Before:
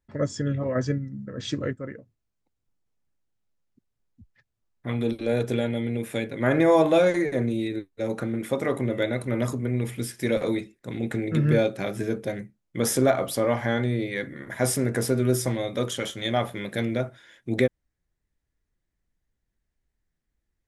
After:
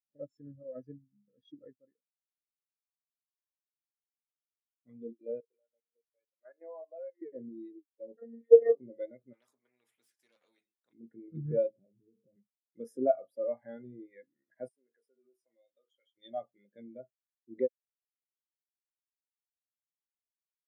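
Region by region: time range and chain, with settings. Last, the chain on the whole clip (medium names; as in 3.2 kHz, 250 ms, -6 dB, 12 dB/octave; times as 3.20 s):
5.40–7.22 s: high-pass 600 Hz + level held to a coarse grid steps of 13 dB + distance through air 360 m
8.17–8.75 s: small resonant body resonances 550/1800 Hz, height 17 dB, ringing for 55 ms + robot voice 231 Hz
9.33–10.93 s: self-modulated delay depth 0.061 ms + spectrum-flattening compressor 4:1
11.70–12.36 s: tilt EQ -4 dB/octave + compression 12:1, threshold -29 dBFS
14.68–16.17 s: high-pass 900 Hz 6 dB/octave + compression 20:1, threshold -31 dBFS
whole clip: high-pass 120 Hz; bass shelf 170 Hz -8 dB; spectral contrast expander 2.5:1; trim +2 dB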